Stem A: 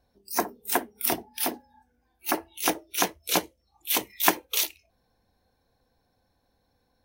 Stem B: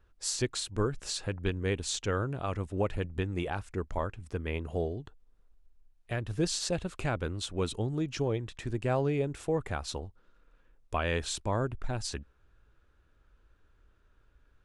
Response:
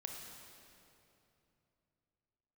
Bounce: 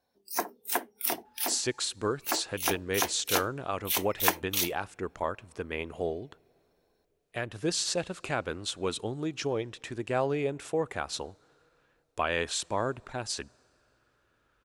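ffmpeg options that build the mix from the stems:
-filter_complex "[0:a]volume=-3.5dB[a];[1:a]adelay=1250,volume=3dB,asplit=2[b][c];[c]volume=-22.5dB[d];[2:a]atrim=start_sample=2205[e];[d][e]afir=irnorm=-1:irlink=0[f];[a][b][f]amix=inputs=3:normalize=0,highpass=f=380:p=1"

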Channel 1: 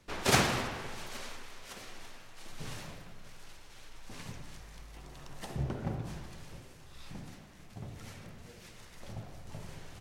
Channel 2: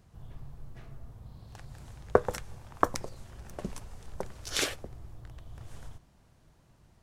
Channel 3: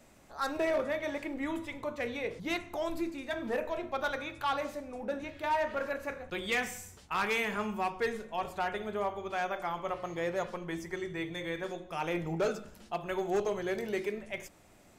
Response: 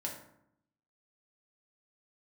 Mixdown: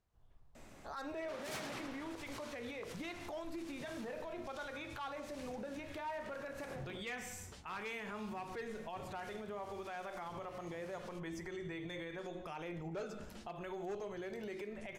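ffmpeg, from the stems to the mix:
-filter_complex "[0:a]highpass=150,asoftclip=type=tanh:threshold=-27dB,adelay=1200,volume=-3.5dB,asplit=3[a][b][c];[a]atrim=end=7,asetpts=PTS-STARTPTS,afade=t=out:st=6.996:d=0.004:c=hsin[d];[b]atrim=start=7:end=7.68,asetpts=PTS-STARTPTS,volume=0[e];[c]atrim=start=7.68,asetpts=PTS-STARTPTS,afade=t=in:d=0.004:c=hsin[f];[d][e][f]concat=n=3:v=0:a=1[g];[1:a]equalizer=f=140:w=0.76:g=-10.5,volume=-17.5dB[h];[2:a]adelay=550,volume=2.5dB[i];[h][i]amix=inputs=2:normalize=0,highshelf=f=10k:g=-9,acompressor=threshold=-34dB:ratio=6,volume=0dB[j];[g][j]amix=inputs=2:normalize=0,alimiter=level_in=12.5dB:limit=-24dB:level=0:latency=1:release=99,volume=-12.5dB"

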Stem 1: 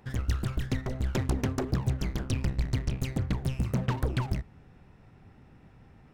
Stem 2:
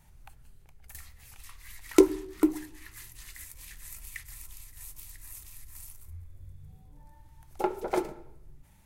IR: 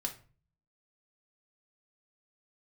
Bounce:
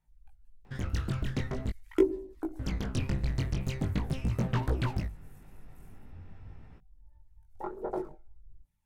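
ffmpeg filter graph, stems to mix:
-filter_complex "[0:a]highshelf=f=9.2k:g=-9,bandreject=f=50:t=h:w=6,bandreject=f=100:t=h:w=6,adelay=650,volume=2.5dB,asplit=3[a][b][c];[a]atrim=end=1.7,asetpts=PTS-STARTPTS,afade=t=out:st=1.696:d=0.004:c=hsin[d];[b]atrim=start=1.7:end=2.59,asetpts=PTS-STARTPTS,volume=0[e];[c]atrim=start=2.59,asetpts=PTS-STARTPTS,afade=t=in:d=0.004:c=hsin[f];[d][e][f]concat=n=3:v=0:a=1[g];[1:a]bandreject=f=60:t=h:w=6,bandreject=f=120:t=h:w=6,bandreject=f=180:t=h:w=6,bandreject=f=240:t=h:w=6,bandreject=f=300:t=h:w=6,bandreject=f=360:t=h:w=6,afwtdn=0.0158,aphaser=in_gain=1:out_gain=1:delay=1.4:decay=0.56:speed=1.4:type=sinusoidal,volume=-4.5dB[h];[g][h]amix=inputs=2:normalize=0,flanger=delay=18:depth=3.4:speed=0.44"

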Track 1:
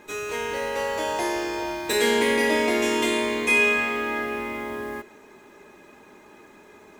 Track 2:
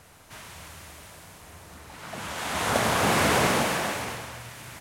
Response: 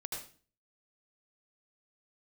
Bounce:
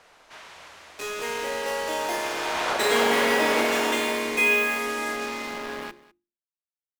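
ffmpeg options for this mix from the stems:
-filter_complex "[0:a]highshelf=f=9.9k:g=-6,acrusher=bits=4:mix=0:aa=0.5,adelay=900,volume=-1.5dB,asplit=3[a][b][c];[b]volume=-24dB[d];[c]volume=-20.5dB[e];[1:a]lowshelf=f=150:g=10.5,alimiter=limit=-13.5dB:level=0:latency=1:release=104,acrossover=split=340 6200:gain=0.126 1 0.141[f][g][h];[f][g][h]amix=inputs=3:normalize=0,volume=0.5dB[i];[2:a]atrim=start_sample=2205[j];[d][j]afir=irnorm=-1:irlink=0[k];[e]aecho=0:1:203:1[l];[a][i][k][l]amix=inputs=4:normalize=0,equalizer=f=89:t=o:w=1.3:g=-10,bandreject=f=50:t=h:w=6,bandreject=f=100:t=h:w=6,bandreject=f=150:t=h:w=6,bandreject=f=200:t=h:w=6,bandreject=f=250:t=h:w=6,bandreject=f=300:t=h:w=6,bandreject=f=350:t=h:w=6"

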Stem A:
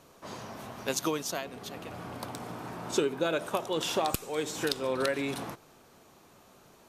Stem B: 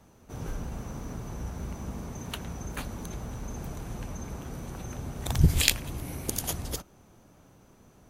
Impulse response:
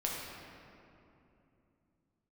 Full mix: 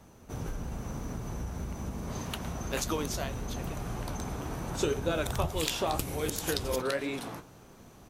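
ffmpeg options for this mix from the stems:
-filter_complex "[0:a]flanger=delay=9.1:depth=9:regen=54:speed=1.9:shape=triangular,adelay=1850,volume=2dB[a];[1:a]acompressor=threshold=-35dB:ratio=4,volume=2.5dB[b];[a][b]amix=inputs=2:normalize=0"

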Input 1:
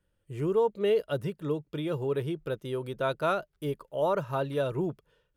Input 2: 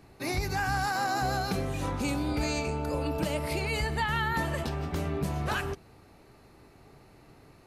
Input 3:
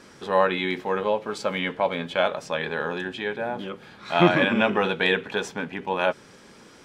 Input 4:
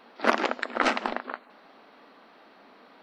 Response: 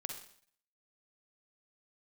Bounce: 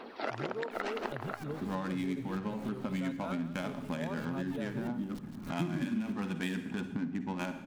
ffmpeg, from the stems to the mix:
-filter_complex "[0:a]equalizer=f=110:t=o:w=0.77:g=9,volume=-9.5dB,asplit=2[a][b];[b]volume=-13dB[c];[1:a]acrusher=bits=3:dc=4:mix=0:aa=0.000001,aeval=exprs='val(0)*pow(10,-34*if(lt(mod(-3.2*n/s,1),2*abs(-3.2)/1000),1-mod(-3.2*n/s,1)/(2*abs(-3.2)/1000),(mod(-3.2*n/s,1)-2*abs(-3.2)/1000)/(1-2*abs(-3.2)/1000))/20)':c=same,adelay=500,volume=-12dB,asplit=2[d][e];[e]volume=-8dB[f];[2:a]lowshelf=f=350:t=q:w=3:g=9.5,tremolo=f=8.3:d=0.46,adynamicsmooth=sensitivity=3.5:basefreq=550,adelay=1400,volume=-5.5dB,asplit=2[g][h];[h]volume=-4dB[i];[3:a]equalizer=f=390:w=1.5:g=6.5,aphaser=in_gain=1:out_gain=1:delay=1.5:decay=0.47:speed=1.9:type=sinusoidal,volume=1.5dB,asplit=2[j][k];[k]volume=-20.5dB[l];[g][j]amix=inputs=2:normalize=0,acompressor=threshold=-36dB:ratio=2,volume=0dB[m];[4:a]atrim=start_sample=2205[n];[i][n]afir=irnorm=-1:irlink=0[o];[c][f][l]amix=inputs=3:normalize=0,aecho=0:1:168:1[p];[a][d][m][o][p]amix=inputs=5:normalize=0,acompressor=threshold=-33dB:ratio=4"

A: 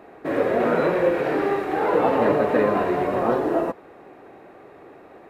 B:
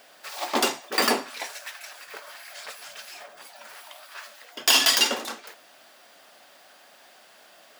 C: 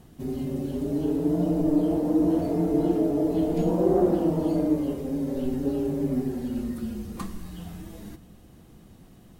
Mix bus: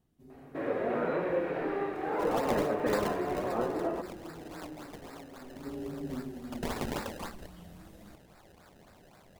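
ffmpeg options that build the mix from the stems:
-filter_complex "[0:a]acrossover=split=3700[a][b];[b]acompressor=threshold=-58dB:ratio=4:attack=1:release=60[c];[a][c]amix=inputs=2:normalize=0,adelay=300,volume=-10.5dB[d];[1:a]acrossover=split=1200|5500[e][f][g];[e]acompressor=threshold=-33dB:ratio=4[h];[f]acompressor=threshold=-33dB:ratio=4[i];[g]acompressor=threshold=-35dB:ratio=4[j];[h][i][j]amix=inputs=3:normalize=0,acrusher=samples=27:mix=1:aa=0.000001:lfo=1:lforange=27:lforate=3.7,adelay=1950,volume=-5.5dB[k];[2:a]volume=-12dB,afade=t=in:st=5.53:d=0.24:silence=0.281838[l];[d][k][l]amix=inputs=3:normalize=0"

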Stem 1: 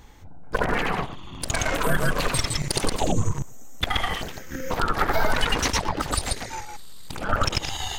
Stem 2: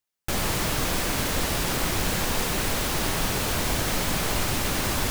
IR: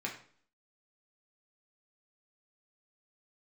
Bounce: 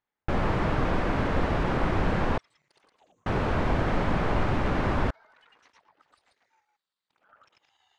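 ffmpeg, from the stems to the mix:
-filter_complex "[0:a]aderivative,volume=-16.5dB[a];[1:a]volume=2.5dB,asplit=3[b][c][d];[b]atrim=end=2.38,asetpts=PTS-STARTPTS,afade=t=out:st=2.376:d=0.004:c=hsin[e];[c]atrim=start=2.38:end=3.26,asetpts=PTS-STARTPTS,volume=0[f];[d]atrim=start=3.26,asetpts=PTS-STARTPTS,afade=t=in:d=0.004:c=hsin[g];[e][f][g]concat=n=3:v=0:a=1[h];[a][h]amix=inputs=2:normalize=0,lowpass=1.5k"

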